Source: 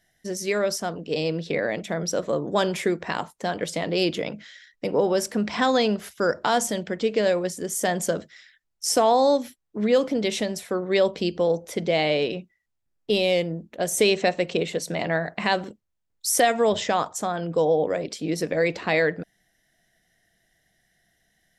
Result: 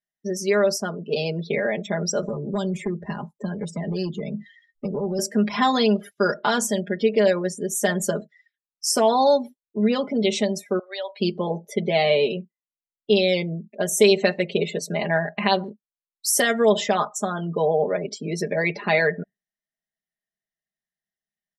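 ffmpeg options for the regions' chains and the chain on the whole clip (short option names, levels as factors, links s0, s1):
-filter_complex "[0:a]asettb=1/sr,asplit=3[s0][s1][s2];[s0]atrim=end=2.224[s3];[s1]atrim=start=2.22:end=5.19,asetpts=PTS-STARTPTS,afade=t=in:d=0.004:c=qsin,afade=t=out:st=2.966:d=0.004:c=qsin,lowshelf=f=330:g=11,acrossover=split=150|5300[s4][s5][s6];[s4]acompressor=threshold=0.02:ratio=4[s7];[s5]acompressor=threshold=0.0316:ratio=4[s8];[s6]acompressor=threshold=0.01:ratio=4[s9];[s7][s8][s9]amix=inputs=3:normalize=0,asoftclip=type=hard:threshold=0.0668[s10];[s2]atrim=start=5.186[s11];[s3][s10]acrossfade=d=0.004:c1=hsin:c2=qsin[s12];[s12][s11]acrossfade=d=0.004:c1=qsin:c2=hsin,asettb=1/sr,asplit=3[s13][s14][s15];[s13]atrim=end=10.794[s16];[s14]atrim=start=10.79:end=11.2,asetpts=PTS-STARTPTS,afade=t=in:d=0.004:c=qsin,afade=t=out:st=0.406:d=0.004:c=qsin,highpass=f=730:w=0.5412,highpass=f=730:w=1.3066,equalizer=f=6200:w=4.8:g=-13,acompressor=threshold=0.0316:ratio=2.5:attack=3.2:release=140:knee=1:detection=peak[s17];[s15]atrim=start=11.196[s18];[s16][s17]acrossfade=d=0.004:c1=hsin:c2=qsin[s19];[s19][s18]acrossfade=d=0.004:c1=qsin:c2=hsin,aecho=1:1:4.9:0.86,afftdn=nr=30:nf=-35,lowshelf=f=61:g=-9"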